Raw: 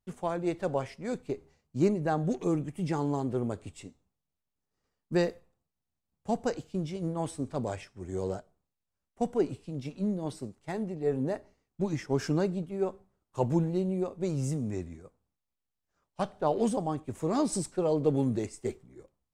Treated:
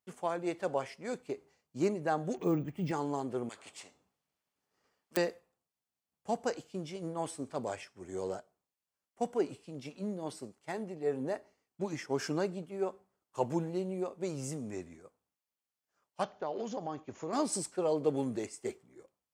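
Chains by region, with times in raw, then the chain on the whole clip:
2.37–2.91 s: low-pass 4.6 kHz + bass shelf 200 Hz +12 dB + careless resampling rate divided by 2×, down none, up hold
3.49–5.17 s: treble shelf 6.3 kHz -8.5 dB + integer overflow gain 18 dB + spectrum-flattening compressor 4:1
16.24–17.33 s: compression, threshold -29 dBFS + brick-wall FIR low-pass 7.2 kHz
whole clip: high-pass 470 Hz 6 dB/octave; band-stop 3.8 kHz, Q 17

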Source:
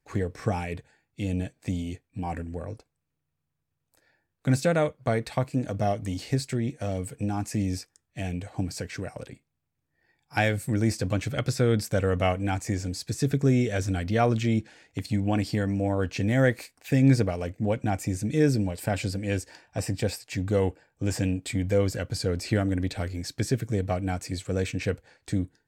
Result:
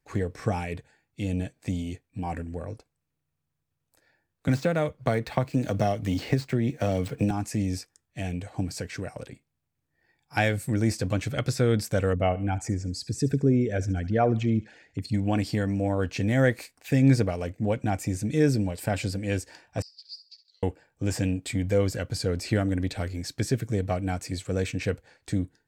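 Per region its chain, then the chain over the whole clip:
4.48–7.31 s: median filter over 5 samples + three bands compressed up and down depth 100%
12.13–15.14 s: resonances exaggerated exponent 1.5 + thinning echo 71 ms, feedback 49%, high-pass 880 Hz, level -16 dB
19.82–20.63 s: gate -42 dBFS, range -15 dB + Butterworth band-pass 4.6 kHz, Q 5.8 + flutter echo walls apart 11.3 m, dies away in 0.32 s
whole clip: none

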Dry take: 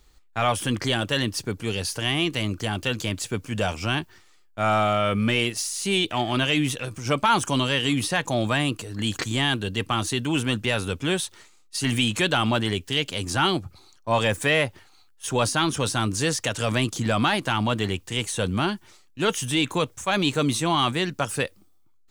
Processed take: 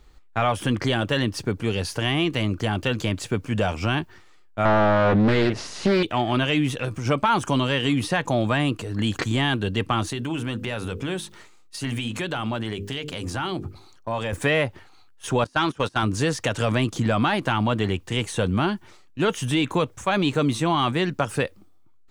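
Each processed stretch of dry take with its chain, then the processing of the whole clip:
4.65–6.03 s: waveshaping leveller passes 3 + tape spacing loss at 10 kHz 23 dB + loudspeaker Doppler distortion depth 0.74 ms
10.10–14.33 s: hum notches 50/100/150/200/250/300/350/400/450/500 Hz + compression 3:1, threshold -31 dBFS + treble shelf 10 kHz +5 dB
15.44–16.03 s: de-esser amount 60% + overdrive pedal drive 7 dB, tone 7.4 kHz, clips at -11 dBFS + gate -29 dBFS, range -19 dB
whole clip: treble shelf 3.7 kHz -12 dB; compression 2:1, threshold -26 dBFS; trim +5.5 dB

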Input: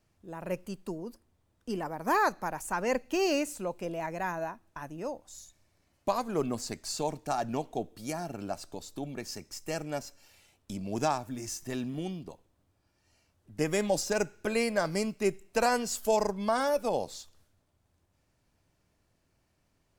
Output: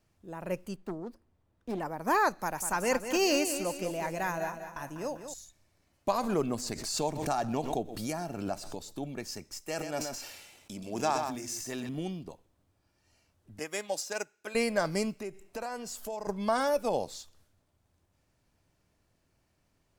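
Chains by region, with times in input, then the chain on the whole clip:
0.76–1.80 s: self-modulated delay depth 0.46 ms + treble shelf 3.8 kHz -11 dB
2.39–5.34 s: treble shelf 3.4 kHz +8 dB + feedback delay 197 ms, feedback 45%, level -9.5 dB
6.09–8.97 s: delay 122 ms -21.5 dB + swell ahead of each attack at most 51 dB/s
9.61–11.89 s: bass shelf 180 Hz -11.5 dB + delay 127 ms -8 dB + decay stretcher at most 43 dB/s
13.59–14.55 s: high-pass 870 Hz 6 dB/octave + upward expansion, over -46 dBFS
15.19–16.27 s: peaking EQ 780 Hz +4 dB 1.8 oct + compression 3:1, threshold -39 dBFS
whole clip: none

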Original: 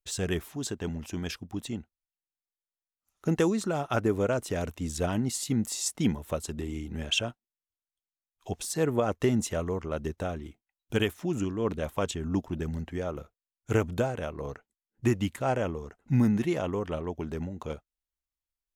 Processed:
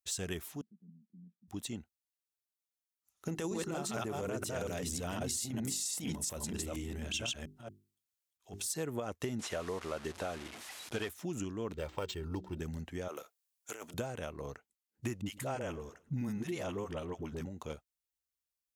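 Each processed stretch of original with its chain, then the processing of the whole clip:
0.61–1.48 s: Butterworth band-pass 190 Hz, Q 3.9 + tilt EQ +4 dB/octave
3.28–8.67 s: chunks repeated in reverse 232 ms, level 0 dB + hum notches 50/100/150/200/250/300/350/400 Hz + transient shaper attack -12 dB, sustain +2 dB
9.39–11.09 s: one-bit delta coder 64 kbps, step -40.5 dBFS + overdrive pedal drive 14 dB, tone 2 kHz, clips at -14 dBFS
11.74–12.57 s: comb 2.2 ms, depth 55% + de-hum 62.3 Hz, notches 6 + decimation joined by straight lines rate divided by 4×
13.08–13.94 s: high-pass 490 Hz + treble shelf 5.2 kHz +5 dB + compressor with a negative ratio -38 dBFS
15.21–17.46 s: phase dispersion highs, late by 51 ms, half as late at 440 Hz + feedback delay 105 ms, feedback 48%, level -23.5 dB
whole clip: high-pass 49 Hz; treble shelf 3.2 kHz +9 dB; compression, threshold -27 dBFS; trim -6.5 dB

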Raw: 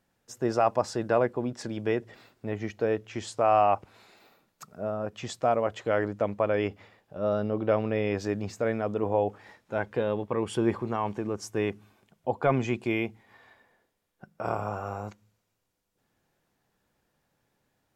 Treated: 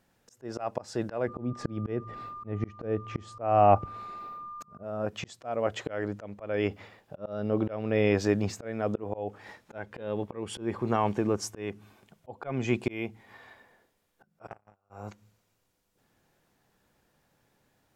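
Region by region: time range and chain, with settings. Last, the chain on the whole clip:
1.27–4.82 s: tilt EQ -3 dB/octave + whistle 1.2 kHz -43 dBFS
14.47–14.90 s: gate -29 dBFS, range -45 dB + loudspeaker Doppler distortion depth 0.16 ms
whole clip: dynamic bell 1 kHz, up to -4 dB, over -41 dBFS, Q 3.6; slow attack 365 ms; trim +4.5 dB

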